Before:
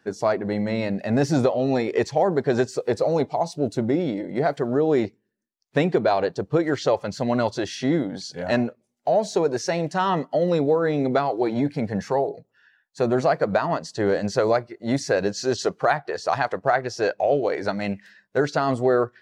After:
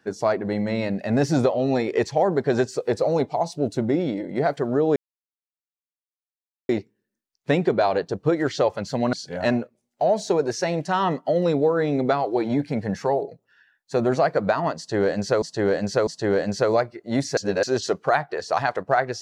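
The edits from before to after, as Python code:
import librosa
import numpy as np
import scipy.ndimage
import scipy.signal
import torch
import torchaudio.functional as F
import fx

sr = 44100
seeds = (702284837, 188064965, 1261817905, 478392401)

y = fx.edit(x, sr, fx.insert_silence(at_s=4.96, length_s=1.73),
    fx.cut(start_s=7.4, length_s=0.79),
    fx.repeat(start_s=13.83, length_s=0.65, count=3),
    fx.reverse_span(start_s=15.13, length_s=0.26), tone=tone)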